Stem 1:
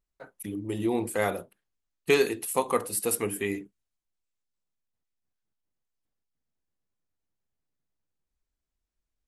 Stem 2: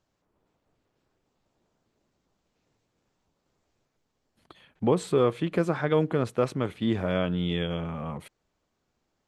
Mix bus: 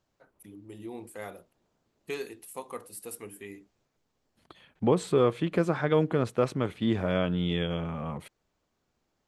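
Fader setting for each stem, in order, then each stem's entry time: -13.5 dB, -0.5 dB; 0.00 s, 0.00 s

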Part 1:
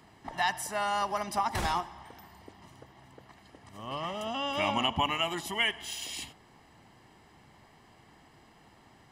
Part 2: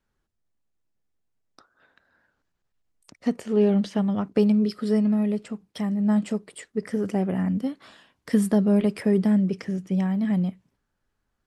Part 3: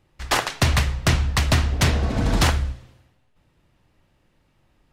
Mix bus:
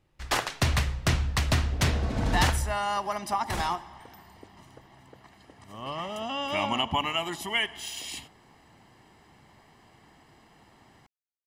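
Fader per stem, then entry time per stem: +1.0 dB, mute, -6.0 dB; 1.95 s, mute, 0.00 s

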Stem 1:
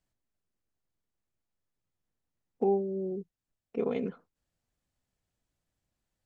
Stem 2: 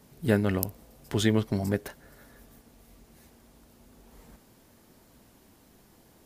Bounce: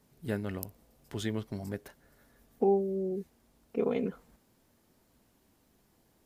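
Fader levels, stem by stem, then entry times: +1.0 dB, -10.0 dB; 0.00 s, 0.00 s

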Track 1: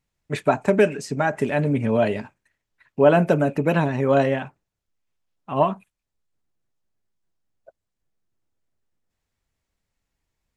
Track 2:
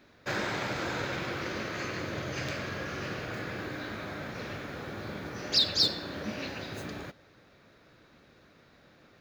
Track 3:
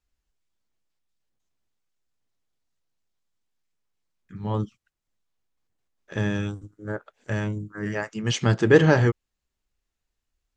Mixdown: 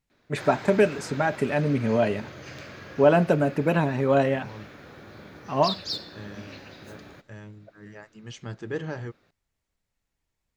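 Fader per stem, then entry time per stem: -2.5 dB, -6.5 dB, -16.0 dB; 0.00 s, 0.10 s, 0.00 s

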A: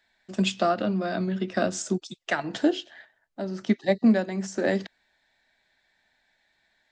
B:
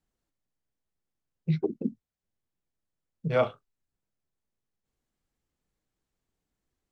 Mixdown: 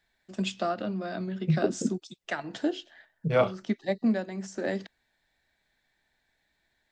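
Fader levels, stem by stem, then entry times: -6.0 dB, +1.5 dB; 0.00 s, 0.00 s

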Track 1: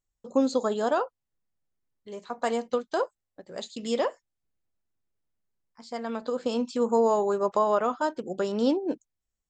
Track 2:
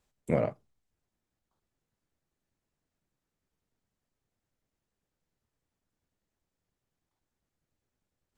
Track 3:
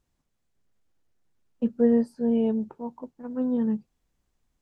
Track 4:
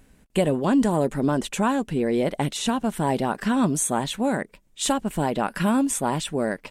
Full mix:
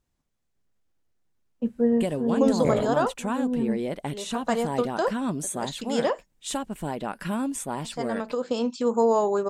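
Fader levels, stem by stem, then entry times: +1.5 dB, +2.0 dB, -1.5 dB, -7.0 dB; 2.05 s, 2.35 s, 0.00 s, 1.65 s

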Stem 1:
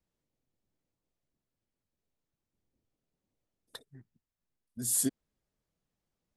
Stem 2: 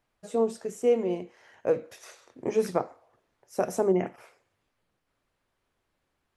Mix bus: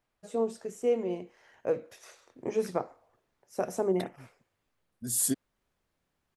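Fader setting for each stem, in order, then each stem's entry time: +1.0 dB, -4.0 dB; 0.25 s, 0.00 s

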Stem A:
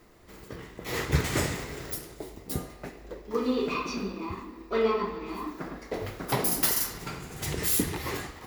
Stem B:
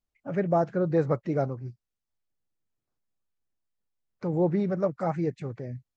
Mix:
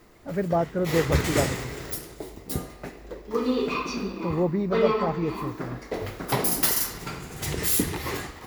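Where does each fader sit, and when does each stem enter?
+2.5 dB, 0.0 dB; 0.00 s, 0.00 s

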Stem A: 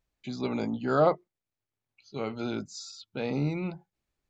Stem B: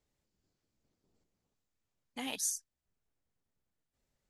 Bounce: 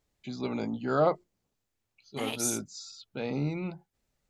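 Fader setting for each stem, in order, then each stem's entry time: -2.0 dB, +3.0 dB; 0.00 s, 0.00 s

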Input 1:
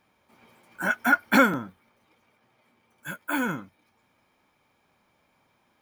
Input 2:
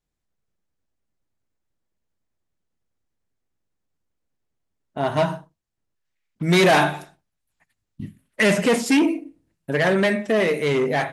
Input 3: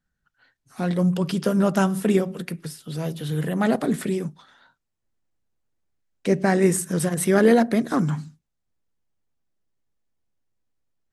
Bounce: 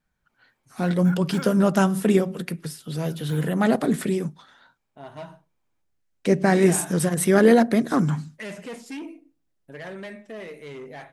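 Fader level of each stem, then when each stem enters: -18.0 dB, -18.0 dB, +1.0 dB; 0.00 s, 0.00 s, 0.00 s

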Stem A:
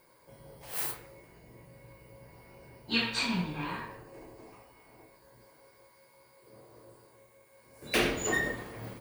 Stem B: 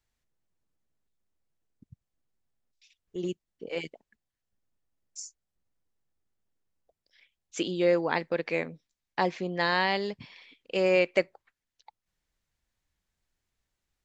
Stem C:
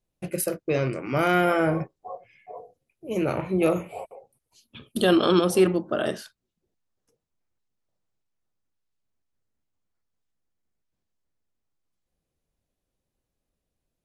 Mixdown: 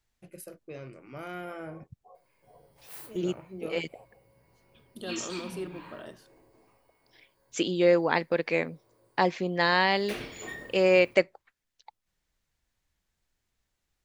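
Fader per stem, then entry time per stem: -11.0 dB, +2.5 dB, -18.0 dB; 2.15 s, 0.00 s, 0.00 s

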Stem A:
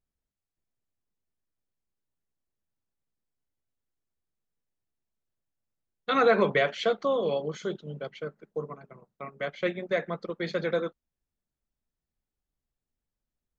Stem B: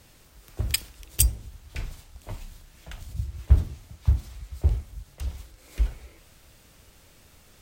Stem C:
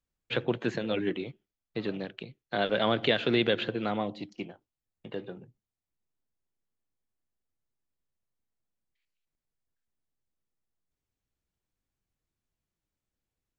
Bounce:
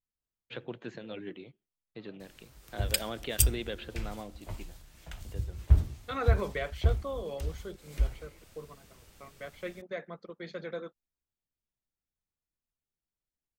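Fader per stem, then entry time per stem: -10.5 dB, -3.5 dB, -11.5 dB; 0.00 s, 2.20 s, 0.20 s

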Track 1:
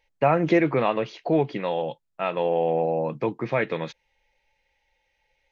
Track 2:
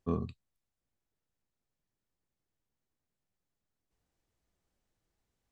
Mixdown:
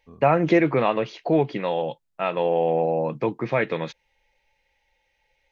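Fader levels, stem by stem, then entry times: +1.5 dB, -15.5 dB; 0.00 s, 0.00 s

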